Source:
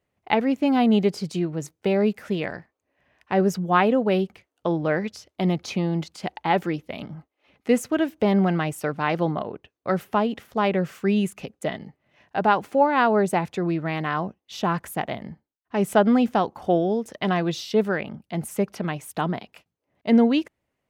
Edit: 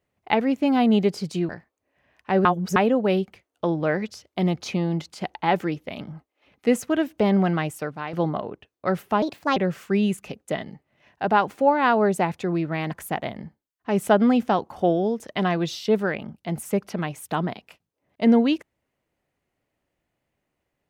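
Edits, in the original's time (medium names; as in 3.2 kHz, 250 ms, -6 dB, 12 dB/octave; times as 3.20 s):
1.49–2.51 s: delete
3.47–3.78 s: reverse
8.64–9.15 s: fade out, to -11.5 dB
10.24–10.70 s: speed 134%
14.05–14.77 s: delete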